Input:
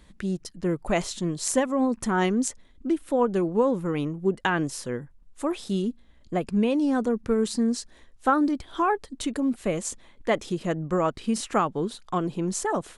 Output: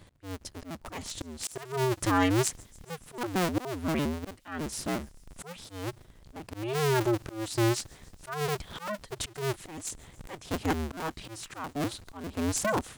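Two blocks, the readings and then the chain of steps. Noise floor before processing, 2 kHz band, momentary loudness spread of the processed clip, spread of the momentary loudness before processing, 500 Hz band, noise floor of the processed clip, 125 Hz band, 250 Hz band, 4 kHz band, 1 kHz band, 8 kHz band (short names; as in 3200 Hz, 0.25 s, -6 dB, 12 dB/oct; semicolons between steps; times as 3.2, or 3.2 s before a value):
-54 dBFS, -3.0 dB, 17 LU, 8 LU, -6.5 dB, -57 dBFS, -0.5 dB, -8.0 dB, -0.5 dB, -6.0 dB, -2.5 dB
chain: cycle switcher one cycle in 2, inverted; dynamic EQ 490 Hz, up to -4 dB, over -34 dBFS, Q 1.7; auto swell 0.357 s; thin delay 0.142 s, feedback 76%, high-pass 4900 Hz, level -23 dB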